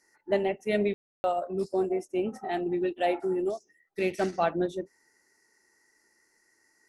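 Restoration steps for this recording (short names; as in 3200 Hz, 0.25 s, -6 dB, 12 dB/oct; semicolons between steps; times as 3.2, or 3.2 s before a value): room tone fill 0.94–1.24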